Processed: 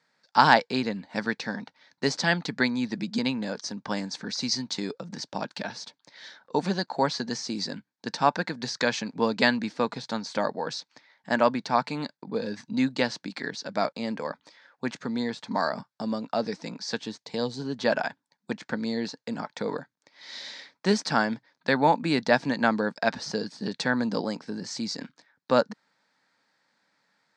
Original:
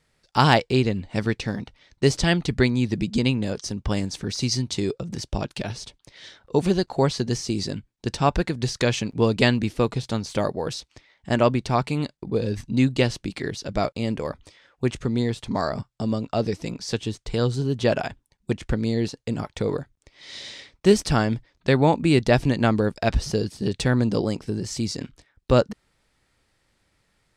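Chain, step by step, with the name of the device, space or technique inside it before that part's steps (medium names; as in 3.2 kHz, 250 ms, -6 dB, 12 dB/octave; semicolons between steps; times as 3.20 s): 17.19–17.60 s: peaking EQ 1.4 kHz -14 dB 0.46 oct; television speaker (cabinet simulation 190–6800 Hz, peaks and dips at 370 Hz -10 dB, 910 Hz +6 dB, 1.6 kHz +7 dB, 2.9 kHz -6 dB, 4.4 kHz +4 dB); trim -2.5 dB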